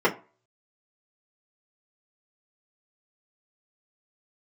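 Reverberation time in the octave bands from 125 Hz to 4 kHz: 0.35, 0.30, 0.35, 0.35, 0.30, 0.20 seconds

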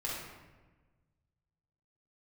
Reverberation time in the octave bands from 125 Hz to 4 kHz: 2.2, 1.6, 1.4, 1.2, 1.1, 0.80 seconds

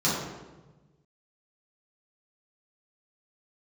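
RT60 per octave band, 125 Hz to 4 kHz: 1.9, 1.5, 1.3, 1.1, 0.95, 0.80 seconds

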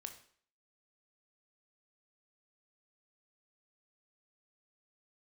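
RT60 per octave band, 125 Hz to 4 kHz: 0.45, 0.50, 0.55, 0.55, 0.55, 0.50 seconds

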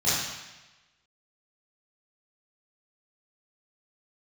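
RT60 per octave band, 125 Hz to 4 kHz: 1.1, 1.0, 1.1, 1.1, 1.2, 1.1 seconds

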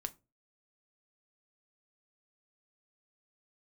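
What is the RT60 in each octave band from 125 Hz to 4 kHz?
0.45, 0.35, 0.35, 0.25, 0.20, 0.15 seconds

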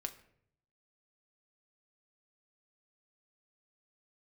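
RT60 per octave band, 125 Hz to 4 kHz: 1.0, 0.85, 0.75, 0.60, 0.60, 0.45 seconds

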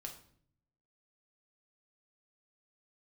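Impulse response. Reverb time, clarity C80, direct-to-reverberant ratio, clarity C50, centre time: 0.60 s, 13.5 dB, 1.5 dB, 9.5 dB, 16 ms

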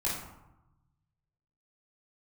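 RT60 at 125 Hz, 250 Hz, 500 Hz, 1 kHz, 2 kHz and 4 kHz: 1.9, 1.2, 0.85, 1.0, 0.70, 0.45 seconds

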